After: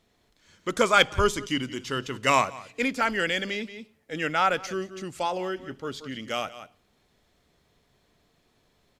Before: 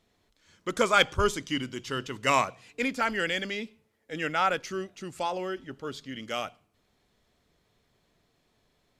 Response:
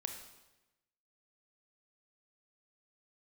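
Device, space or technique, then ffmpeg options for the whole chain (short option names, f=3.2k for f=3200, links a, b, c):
ducked delay: -filter_complex "[0:a]asplit=3[a][b][c];[b]adelay=177,volume=-5.5dB[d];[c]apad=whole_len=404540[e];[d][e]sidechaincompress=threshold=-44dB:ratio=6:attack=6.5:release=216[f];[a][f]amix=inputs=2:normalize=0,volume=2.5dB"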